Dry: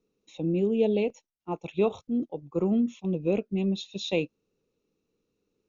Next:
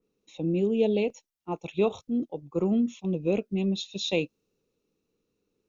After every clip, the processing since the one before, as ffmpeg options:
-af "adynamicequalizer=threshold=0.00501:dfrequency=3100:dqfactor=0.7:tfrequency=3100:tqfactor=0.7:attack=5:release=100:ratio=0.375:range=2.5:mode=boostabove:tftype=highshelf"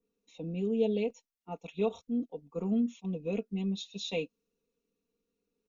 -af "aecho=1:1:4.3:0.82,volume=-9dB"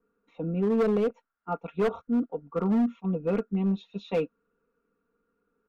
-af "lowpass=f=1.4k:t=q:w=7.9,asoftclip=type=hard:threshold=-26.5dB,volume=6.5dB"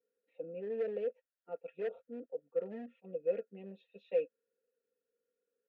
-filter_complex "[0:a]asplit=3[a][b][c];[a]bandpass=f=530:t=q:w=8,volume=0dB[d];[b]bandpass=f=1.84k:t=q:w=8,volume=-6dB[e];[c]bandpass=f=2.48k:t=q:w=8,volume=-9dB[f];[d][e][f]amix=inputs=3:normalize=0,volume=-1dB"

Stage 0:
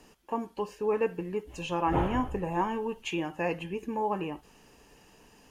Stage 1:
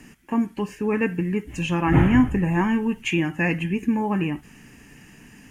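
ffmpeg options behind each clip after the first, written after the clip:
-af "equalizer=f=125:t=o:w=1:g=8,equalizer=f=250:t=o:w=1:g=8,equalizer=f=500:t=o:w=1:g=-9,equalizer=f=1k:t=o:w=1:g=-6,equalizer=f=2k:t=o:w=1:g=11,equalizer=f=4k:t=o:w=1:g=-8,equalizer=f=8k:t=o:w=1:g=3,volume=7dB"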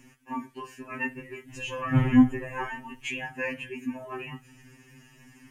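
-af "afftfilt=real='re*2.45*eq(mod(b,6),0)':imag='im*2.45*eq(mod(b,6),0)':win_size=2048:overlap=0.75,volume=-4dB"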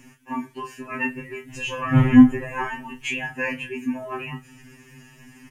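-filter_complex "[0:a]asplit=2[a][b];[b]adelay=28,volume=-8.5dB[c];[a][c]amix=inputs=2:normalize=0,volume=5dB"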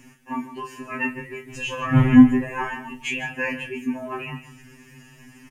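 -af "aecho=1:1:152:0.224"

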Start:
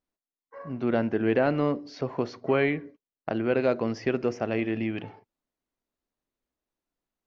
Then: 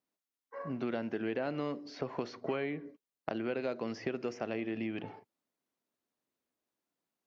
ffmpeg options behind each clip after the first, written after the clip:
-filter_complex "[0:a]highpass=140,acrossover=split=1400|3000[a][b][c];[a]acompressor=threshold=-34dB:ratio=4[d];[b]acompressor=threshold=-50dB:ratio=4[e];[c]acompressor=threshold=-53dB:ratio=4[f];[d][e][f]amix=inputs=3:normalize=0"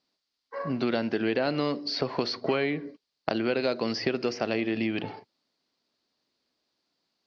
-af "lowpass=f=4.6k:t=q:w=5.1,volume=8dB"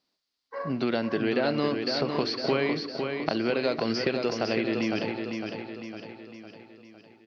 -af "aecho=1:1:506|1012|1518|2024|2530|3036:0.531|0.271|0.138|0.0704|0.0359|0.0183"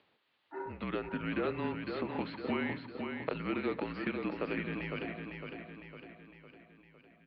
-af "acompressor=mode=upward:threshold=-45dB:ratio=2.5,highpass=f=380:t=q:w=0.5412,highpass=f=380:t=q:w=1.307,lowpass=f=3.3k:t=q:w=0.5176,lowpass=f=3.3k:t=q:w=0.7071,lowpass=f=3.3k:t=q:w=1.932,afreqshift=-170,volume=-6dB"

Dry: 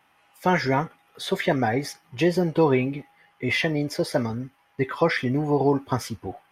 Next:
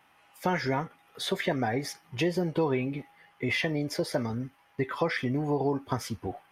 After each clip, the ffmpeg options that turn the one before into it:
-af "acompressor=threshold=-29dB:ratio=2"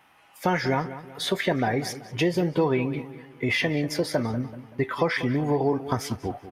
-filter_complex "[0:a]asplit=2[a][b];[b]adelay=191,lowpass=f=3.4k:p=1,volume=-13.5dB,asplit=2[c][d];[d]adelay=191,lowpass=f=3.4k:p=1,volume=0.42,asplit=2[e][f];[f]adelay=191,lowpass=f=3.4k:p=1,volume=0.42,asplit=2[g][h];[h]adelay=191,lowpass=f=3.4k:p=1,volume=0.42[i];[a][c][e][g][i]amix=inputs=5:normalize=0,volume=4dB"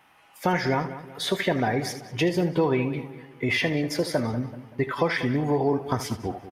-af "aecho=1:1:78:0.224"

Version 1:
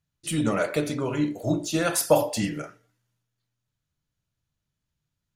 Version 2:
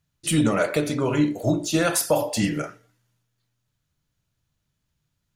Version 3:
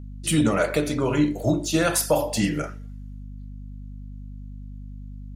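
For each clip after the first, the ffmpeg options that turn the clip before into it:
-af "alimiter=limit=-16dB:level=0:latency=1:release=449,volume=6dB"
-af "aeval=exprs='val(0)+0.0158*(sin(2*PI*50*n/s)+sin(2*PI*2*50*n/s)/2+sin(2*PI*3*50*n/s)/3+sin(2*PI*4*50*n/s)/4+sin(2*PI*5*50*n/s)/5)':c=same"

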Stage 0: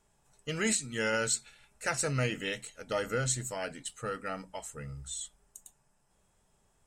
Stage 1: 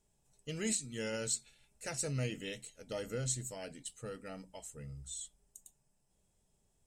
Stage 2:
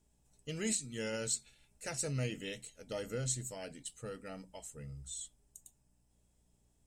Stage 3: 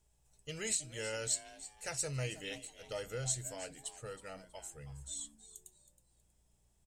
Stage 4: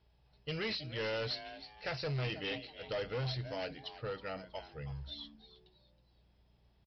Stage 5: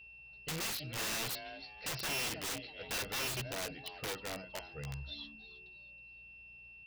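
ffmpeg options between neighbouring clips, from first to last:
-af "equalizer=f=1.3k:t=o:w=1.6:g=-11.5,volume=-4dB"
-af "aeval=exprs='val(0)+0.0002*(sin(2*PI*60*n/s)+sin(2*PI*2*60*n/s)/2+sin(2*PI*3*60*n/s)/3+sin(2*PI*4*60*n/s)/4+sin(2*PI*5*60*n/s)/5)':c=same"
-filter_complex "[0:a]equalizer=f=240:t=o:w=0.91:g=-14,asplit=4[a][b][c][d];[b]adelay=320,afreqshift=150,volume=-15dB[e];[c]adelay=640,afreqshift=300,volume=-25.5dB[f];[d]adelay=960,afreqshift=450,volume=-35.9dB[g];[a][e][f][g]amix=inputs=4:normalize=0,volume=1dB"
-af "highpass=45,aresample=11025,asoftclip=type=hard:threshold=-39.5dB,aresample=44100,volume=6.5dB"
-af "aeval=exprs='val(0)+0.00251*sin(2*PI*2700*n/s)':c=same,aeval=exprs='(mod(47.3*val(0)+1,2)-1)/47.3':c=same"

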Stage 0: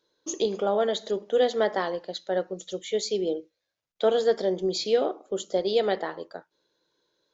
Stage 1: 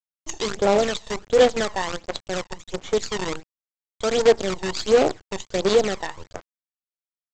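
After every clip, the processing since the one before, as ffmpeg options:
-af "aresample=16000,acrusher=bits=5:dc=4:mix=0:aa=0.000001,aresample=44100,aphaser=in_gain=1:out_gain=1:delay=1.1:decay=0.56:speed=1.4:type=sinusoidal"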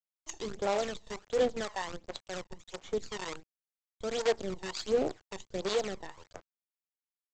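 -filter_complex "[0:a]acrossover=split=520[a][b];[a]aeval=exprs='val(0)*(1-0.7/2+0.7/2*cos(2*PI*2*n/s))':c=same[c];[b]aeval=exprs='val(0)*(1-0.7/2-0.7/2*cos(2*PI*2*n/s))':c=same[d];[c][d]amix=inputs=2:normalize=0,volume=-8.5dB"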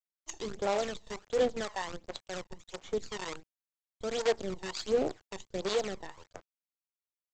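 -af "agate=range=-9dB:threshold=-53dB:ratio=16:detection=peak"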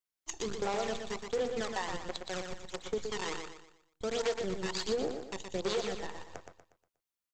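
-filter_complex "[0:a]bandreject=f=610:w=12,acompressor=threshold=-32dB:ratio=5,asplit=2[a][b];[b]aecho=0:1:120|240|360|480|600:0.501|0.19|0.0724|0.0275|0.0105[c];[a][c]amix=inputs=2:normalize=0,volume=2dB"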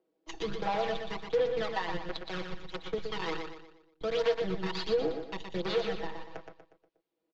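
-filter_complex "[0:a]lowpass=f=4.3k:w=0.5412,lowpass=f=4.3k:w=1.3066,aecho=1:1:6.2:0.88,acrossover=split=320|440|2300[a][b][c][d];[b]acompressor=mode=upward:threshold=-50dB:ratio=2.5[e];[a][e][c][d]amix=inputs=4:normalize=0"

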